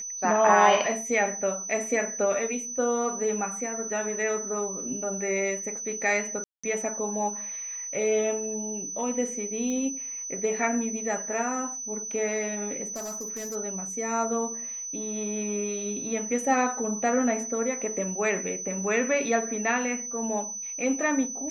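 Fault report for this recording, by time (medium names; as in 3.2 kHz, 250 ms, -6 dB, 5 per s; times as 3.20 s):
whine 6 kHz -33 dBFS
6.44–6.63 s: dropout 195 ms
9.70 s: pop -22 dBFS
12.87–13.56 s: clipped -31.5 dBFS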